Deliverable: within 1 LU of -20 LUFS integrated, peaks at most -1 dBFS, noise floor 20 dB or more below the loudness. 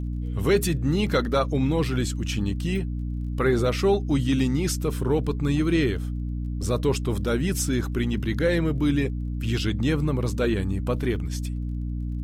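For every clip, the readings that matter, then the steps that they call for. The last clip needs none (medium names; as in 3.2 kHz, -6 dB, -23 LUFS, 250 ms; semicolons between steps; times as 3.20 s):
tick rate 22 per s; hum 60 Hz; highest harmonic 300 Hz; hum level -26 dBFS; loudness -25.0 LUFS; peak level -10.0 dBFS; loudness target -20.0 LUFS
-> de-click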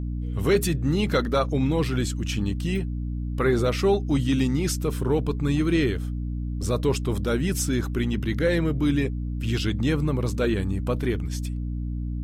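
tick rate 0.33 per s; hum 60 Hz; highest harmonic 300 Hz; hum level -26 dBFS
-> hum notches 60/120/180/240/300 Hz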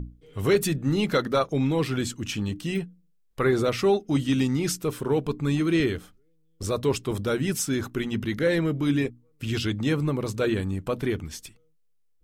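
hum not found; loudness -26.0 LUFS; peak level -11.0 dBFS; loudness target -20.0 LUFS
-> trim +6 dB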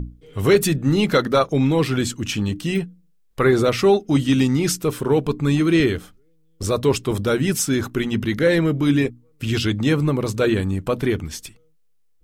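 loudness -20.0 LUFS; peak level -5.0 dBFS; noise floor -58 dBFS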